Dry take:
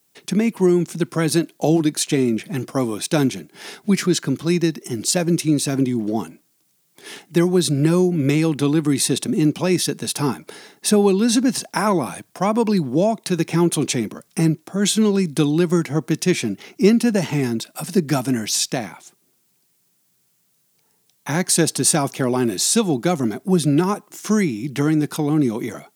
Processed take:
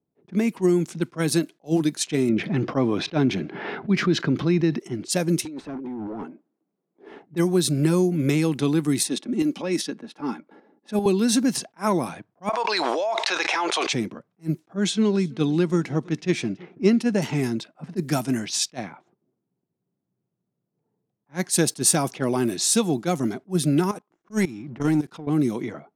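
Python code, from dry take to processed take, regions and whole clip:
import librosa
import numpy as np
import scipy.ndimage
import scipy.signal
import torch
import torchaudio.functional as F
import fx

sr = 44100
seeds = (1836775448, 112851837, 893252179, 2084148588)

y = fx.chain(x, sr, fx.air_absorb(metres=260.0),
    fx.env_flatten(amount_pct=50), at=(2.29, 4.8))
y = fx.chain(y, sr, fx.highpass(hz=210.0, slope=24),
    fx.over_compress(threshold_db=-26.0, ratio=-1.0),
    fx.overload_stage(gain_db=25.5), at=(5.45, 7.23))
y = fx.chain(y, sr, fx.highpass(hz=170.0, slope=24),
    fx.comb(ms=3.6, depth=0.4),
    fx.tremolo_shape(shape='saw_up', hz=5.1, depth_pct=55), at=(9.03, 11.06))
y = fx.chain(y, sr, fx.highpass(hz=660.0, slope=24),
    fx.air_absorb(metres=120.0),
    fx.env_flatten(amount_pct=100), at=(12.49, 13.93))
y = fx.chain(y, sr, fx.air_absorb(metres=79.0),
    fx.echo_feedback(ms=331, feedback_pct=42, wet_db=-24.0), at=(14.77, 17.22))
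y = fx.chain(y, sr, fx.level_steps(step_db=18),
    fx.leveller(passes=1), at=(23.91, 25.27))
y = fx.env_lowpass(y, sr, base_hz=510.0, full_db=-15.0)
y = fx.high_shelf(y, sr, hz=10000.0, db=4.5)
y = fx.attack_slew(y, sr, db_per_s=400.0)
y = F.gain(torch.from_numpy(y), -3.5).numpy()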